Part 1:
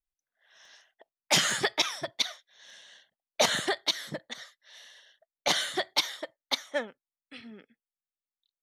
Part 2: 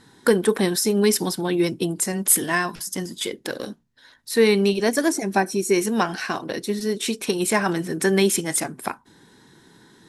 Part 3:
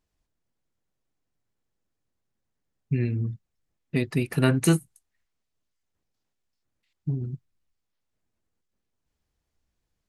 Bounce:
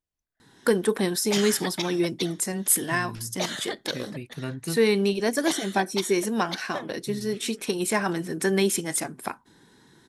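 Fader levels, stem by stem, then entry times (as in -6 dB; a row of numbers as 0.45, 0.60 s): -5.5, -4.0, -12.0 dB; 0.00, 0.40, 0.00 s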